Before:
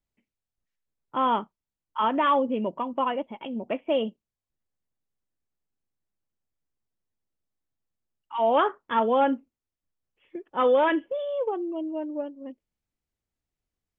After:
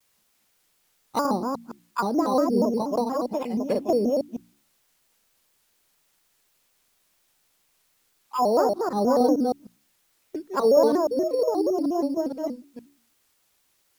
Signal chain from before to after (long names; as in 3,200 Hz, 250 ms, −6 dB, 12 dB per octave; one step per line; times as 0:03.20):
delay that plays each chunk backwards 156 ms, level −2 dB
noise gate −43 dBFS, range −13 dB
treble cut that deepens with the level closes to 580 Hz, closed at −21.5 dBFS
bad sample-rate conversion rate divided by 8×, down none, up hold
high-shelf EQ 2,900 Hz −6.5 dB, from 0:01.26 −12 dB
bit-depth reduction 12 bits, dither triangular
hum removal 64.51 Hz, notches 5
pitch modulation by a square or saw wave square 4.2 Hz, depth 160 cents
level +4.5 dB